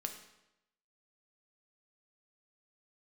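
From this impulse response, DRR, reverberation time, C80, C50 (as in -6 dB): 4.5 dB, 0.90 s, 10.0 dB, 8.0 dB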